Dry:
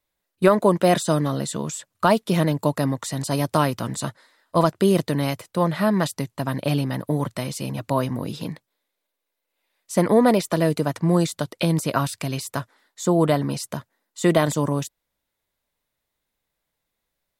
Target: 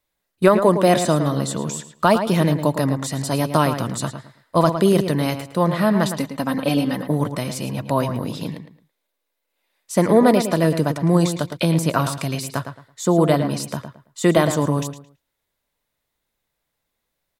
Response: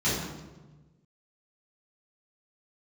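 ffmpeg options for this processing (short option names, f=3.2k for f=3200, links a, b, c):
-filter_complex "[0:a]asettb=1/sr,asplit=3[a][b][c];[a]atrim=end=6.114[d];[b]atrim=start=6.11:end=7.07,asetpts=PTS-STARTPTS,afade=t=in:d=0.004:c=qsin,afade=t=out:st=0.956:d=0.004:c=qsin,aecho=1:1:3.9:0.6,atrim=end_sample=42336[e];[c]atrim=start=7.066[f];[d][e]acrossfade=d=0.004:c1=hsin:c2=qsin[g];[g][f]acrossfade=d=0.004:c1=qsin:c2=hsin,asplit=2[h][i];[i]adelay=110,lowpass=f=3.4k:p=1,volume=-8.5dB,asplit=2[j][k];[k]adelay=110,lowpass=f=3.4k:p=1,volume=0.26,asplit=2[l][m];[m]adelay=110,lowpass=f=3.4k:p=1,volume=0.26[n];[h][j][l][n]amix=inputs=4:normalize=0,volume=2dB"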